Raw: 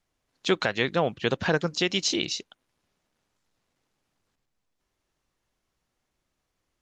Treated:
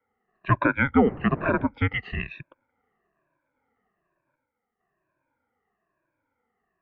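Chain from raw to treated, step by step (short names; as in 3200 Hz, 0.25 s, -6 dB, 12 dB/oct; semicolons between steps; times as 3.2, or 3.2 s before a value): moving spectral ripple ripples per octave 1.8, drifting -1.1 Hz, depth 20 dB; 0.96–1.65 wind noise 240 Hz -25 dBFS; mistuned SSB -260 Hz 400–2300 Hz; gain +2.5 dB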